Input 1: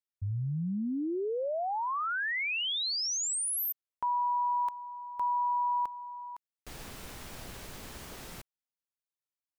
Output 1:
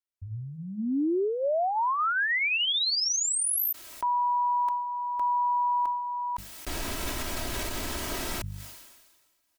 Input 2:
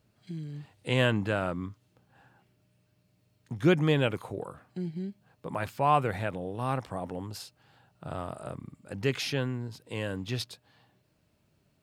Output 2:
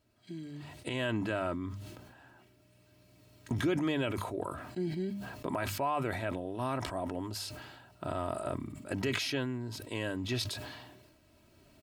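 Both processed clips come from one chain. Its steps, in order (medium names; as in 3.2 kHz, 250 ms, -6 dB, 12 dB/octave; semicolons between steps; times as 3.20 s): recorder AGC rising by 7.6 dB/s; hum notches 50/100/150/200 Hz; comb 3.1 ms, depth 55%; peak limiter -18.5 dBFS; decay stretcher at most 41 dB/s; trim -4 dB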